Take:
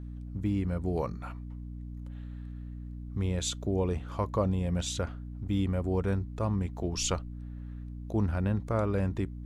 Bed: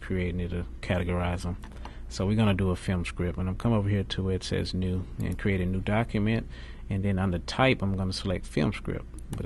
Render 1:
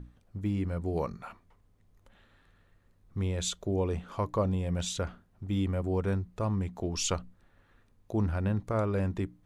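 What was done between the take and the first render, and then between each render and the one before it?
hum notches 60/120/180/240/300 Hz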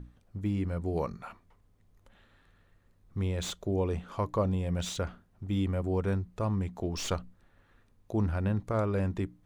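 slew-rate limiter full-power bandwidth 90 Hz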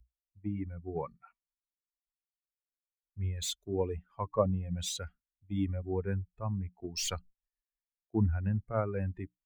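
expander on every frequency bin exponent 2; three bands expanded up and down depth 70%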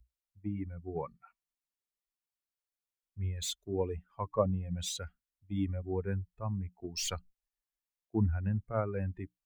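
trim -1 dB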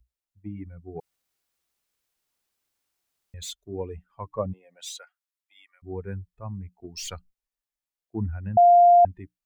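1.00–3.34 s: room tone; 4.52–5.82 s: high-pass 350 Hz -> 1.4 kHz 24 dB/octave; 8.57–9.05 s: bleep 700 Hz -11 dBFS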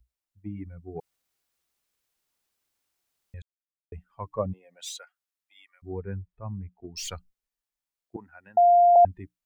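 3.42–3.92 s: mute; 5.92–6.96 s: distance through air 260 m; 8.16–8.96 s: high-pass 670 Hz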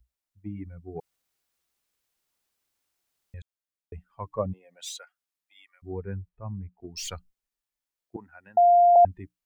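6.29–6.80 s: distance through air 240 m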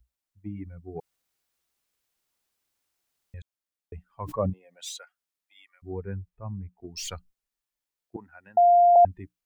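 4.06–4.50 s: decay stretcher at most 23 dB/s

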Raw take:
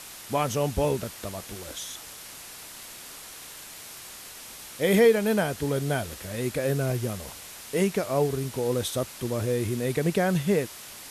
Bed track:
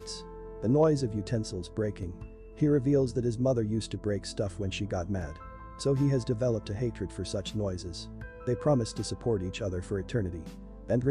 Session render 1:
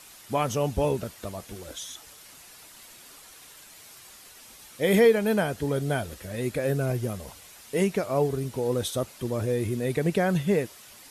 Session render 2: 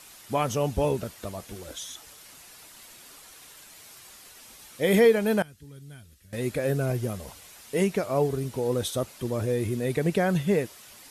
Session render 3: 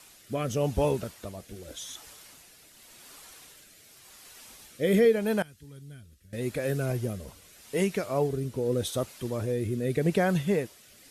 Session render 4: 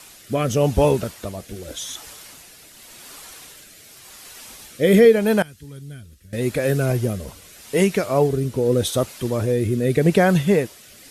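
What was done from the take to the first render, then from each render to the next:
noise reduction 8 dB, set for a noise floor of -43 dBFS
5.42–6.33 s: amplifier tone stack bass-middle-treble 6-0-2
rotary cabinet horn 0.85 Hz
trim +9 dB

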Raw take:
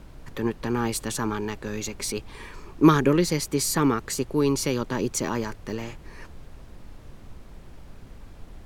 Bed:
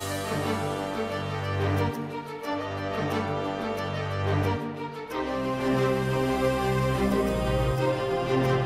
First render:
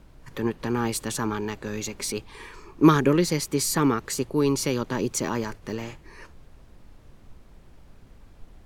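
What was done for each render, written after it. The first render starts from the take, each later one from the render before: noise print and reduce 6 dB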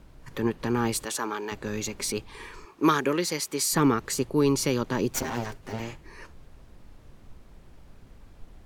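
1.05–1.52 s: high-pass 400 Hz; 2.65–3.73 s: high-pass 580 Hz 6 dB/octave; 5.11–5.80 s: comb filter that takes the minimum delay 7.6 ms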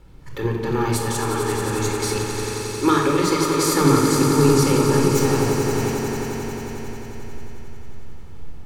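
echo with a slow build-up 89 ms, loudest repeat 5, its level -9 dB; simulated room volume 2800 m³, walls furnished, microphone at 4.2 m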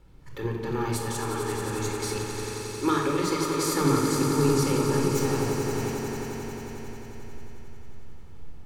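trim -7 dB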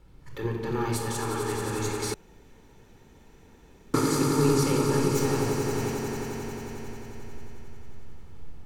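2.14–3.94 s: room tone

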